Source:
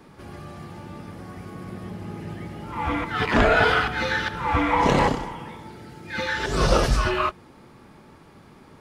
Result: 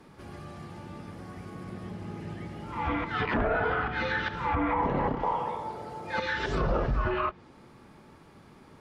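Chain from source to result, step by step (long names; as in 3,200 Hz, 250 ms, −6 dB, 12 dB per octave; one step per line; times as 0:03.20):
treble cut that deepens with the level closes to 1,500 Hz, closed at −17.5 dBFS
0:05.23–0:06.20: flat-topped bell 720 Hz +13 dB
brickwall limiter −14.5 dBFS, peak gain reduction 7 dB
level −4 dB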